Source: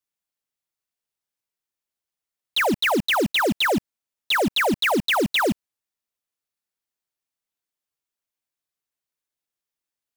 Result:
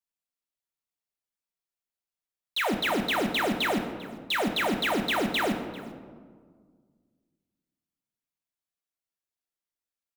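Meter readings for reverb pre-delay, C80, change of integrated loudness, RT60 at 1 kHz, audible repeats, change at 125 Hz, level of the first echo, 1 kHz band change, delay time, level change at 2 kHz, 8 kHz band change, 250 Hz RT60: 3 ms, 9.0 dB, -6.0 dB, 1.6 s, 1, -5.5 dB, -20.0 dB, -5.0 dB, 395 ms, -6.0 dB, -6.5 dB, 2.3 s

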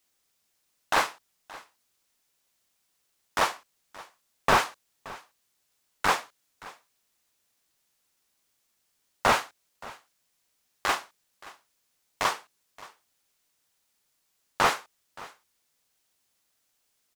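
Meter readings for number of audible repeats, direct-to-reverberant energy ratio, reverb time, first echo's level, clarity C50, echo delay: 1, no reverb, no reverb, -20.5 dB, no reverb, 574 ms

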